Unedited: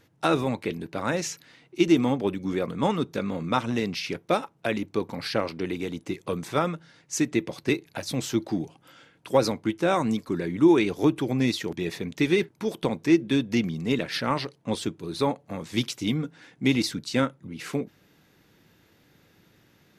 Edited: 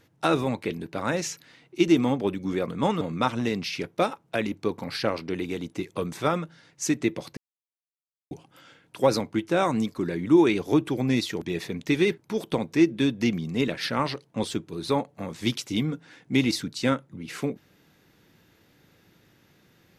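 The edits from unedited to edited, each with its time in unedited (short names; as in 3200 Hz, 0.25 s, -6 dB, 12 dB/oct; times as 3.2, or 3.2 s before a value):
3.01–3.32 cut
7.68–8.62 mute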